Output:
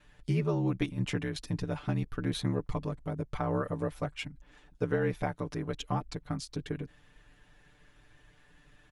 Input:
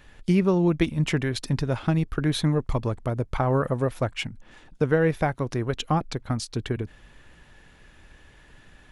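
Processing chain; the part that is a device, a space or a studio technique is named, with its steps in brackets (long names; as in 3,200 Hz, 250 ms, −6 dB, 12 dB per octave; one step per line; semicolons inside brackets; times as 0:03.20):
ring-modulated robot voice (ring modulation 35 Hz; comb filter 6.8 ms, depth 91%)
level −8 dB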